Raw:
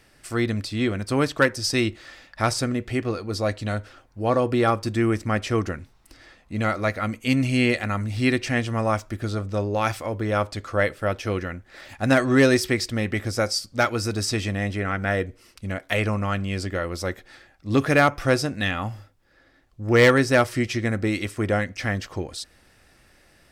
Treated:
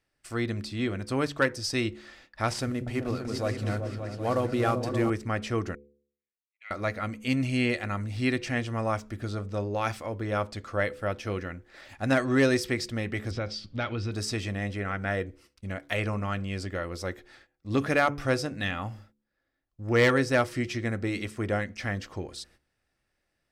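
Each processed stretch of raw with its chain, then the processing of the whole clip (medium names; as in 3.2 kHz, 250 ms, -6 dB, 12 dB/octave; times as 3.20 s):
2.48–5.10 s: CVSD coder 64 kbps + delay with an opening low-pass 192 ms, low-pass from 200 Hz, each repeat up 2 oct, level -3 dB
5.75–6.71 s: ladder band-pass 2.5 kHz, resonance 65% + upward expansion 2.5:1, over -52 dBFS
13.31–14.12 s: bass shelf 270 Hz +10 dB + compression 3:1, threshold -23 dBFS + resonant low-pass 3.3 kHz, resonance Q 2.7
whole clip: treble shelf 10 kHz -5.5 dB; gate -49 dBFS, range -16 dB; de-hum 71.6 Hz, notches 7; trim -5.5 dB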